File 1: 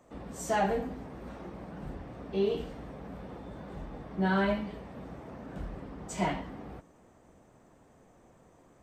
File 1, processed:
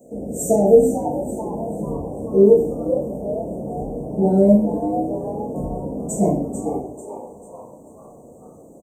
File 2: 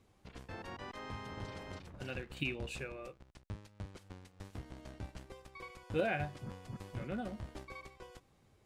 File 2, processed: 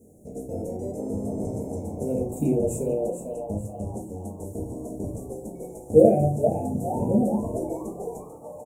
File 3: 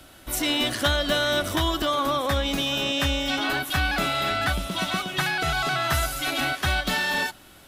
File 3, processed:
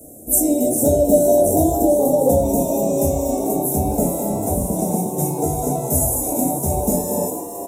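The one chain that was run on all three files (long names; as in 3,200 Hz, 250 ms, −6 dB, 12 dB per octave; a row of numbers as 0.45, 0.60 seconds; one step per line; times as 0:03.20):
high-pass filter 290 Hz 6 dB per octave
dynamic equaliser 3,700 Hz, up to +3 dB, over −40 dBFS, Q 0.88
inverse Chebyshev band-stop filter 1,100–4,700 Hz, stop band 40 dB
parametric band 890 Hz −7.5 dB 0.7 octaves
on a send: echo with shifted repeats 442 ms, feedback 42%, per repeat +110 Hz, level −9 dB
on the sum: rectangular room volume 150 cubic metres, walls furnished, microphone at 1.6 metres
normalise the peak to −1.5 dBFS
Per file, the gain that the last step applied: +15.5, +18.0, +11.5 decibels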